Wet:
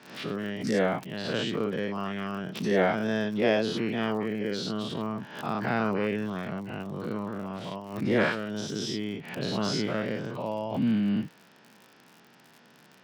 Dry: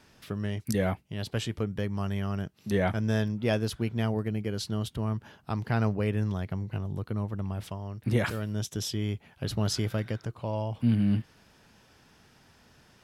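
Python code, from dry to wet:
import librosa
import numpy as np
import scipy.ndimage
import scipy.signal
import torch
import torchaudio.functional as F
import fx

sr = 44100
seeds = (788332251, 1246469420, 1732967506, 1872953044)

y = fx.spec_dilate(x, sr, span_ms=120)
y = scipy.signal.sosfilt(scipy.signal.butter(2, 4000.0, 'lowpass', fs=sr, output='sos'), y)
y = fx.dmg_crackle(y, sr, seeds[0], per_s=60.0, level_db=-39.0)
y = scipy.signal.sosfilt(scipy.signal.butter(4, 160.0, 'highpass', fs=sr, output='sos'), y)
y = fx.pre_swell(y, sr, db_per_s=87.0)
y = F.gain(torch.from_numpy(y), -1.0).numpy()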